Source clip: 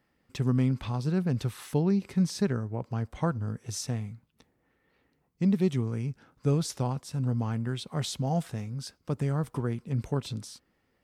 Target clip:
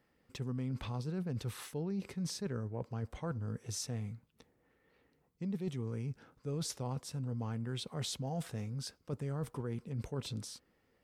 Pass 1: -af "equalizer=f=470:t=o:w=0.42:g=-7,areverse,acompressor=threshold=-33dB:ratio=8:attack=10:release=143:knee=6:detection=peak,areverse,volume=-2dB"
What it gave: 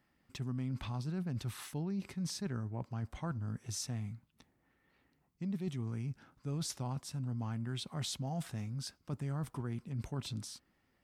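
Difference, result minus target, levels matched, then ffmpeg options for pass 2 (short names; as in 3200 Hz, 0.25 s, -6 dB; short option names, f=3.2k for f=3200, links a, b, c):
500 Hz band -5.0 dB
-af "equalizer=f=470:t=o:w=0.42:g=4.5,areverse,acompressor=threshold=-33dB:ratio=8:attack=10:release=143:knee=6:detection=peak,areverse,volume=-2dB"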